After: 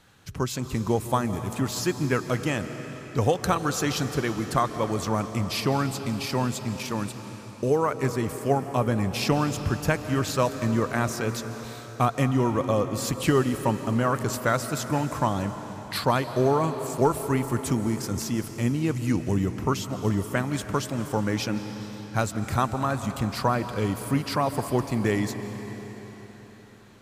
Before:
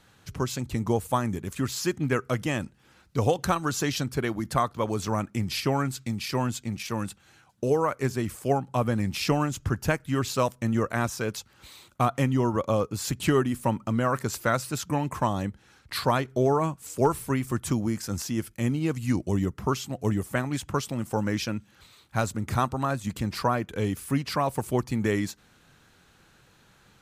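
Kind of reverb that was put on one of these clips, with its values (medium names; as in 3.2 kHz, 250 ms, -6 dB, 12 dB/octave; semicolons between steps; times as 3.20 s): algorithmic reverb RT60 4.7 s, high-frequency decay 0.95×, pre-delay 110 ms, DRR 9 dB; trim +1 dB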